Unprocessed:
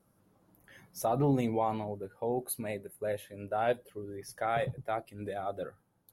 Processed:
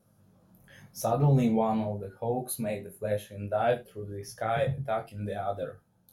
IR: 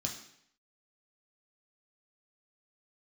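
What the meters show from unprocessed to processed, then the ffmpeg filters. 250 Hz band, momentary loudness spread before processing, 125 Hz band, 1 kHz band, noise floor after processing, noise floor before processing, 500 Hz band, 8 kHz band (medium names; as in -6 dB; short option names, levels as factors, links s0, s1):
+4.5 dB, 14 LU, +8.0 dB, +2.0 dB, -67 dBFS, -72 dBFS, +3.0 dB, +2.5 dB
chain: -filter_complex "[0:a]flanger=delay=18.5:depth=4:speed=0.91,asplit=2[s0][s1];[1:a]atrim=start_sample=2205,atrim=end_sample=3969[s2];[s1][s2]afir=irnorm=-1:irlink=0,volume=0.596[s3];[s0][s3]amix=inputs=2:normalize=0,volume=1.26"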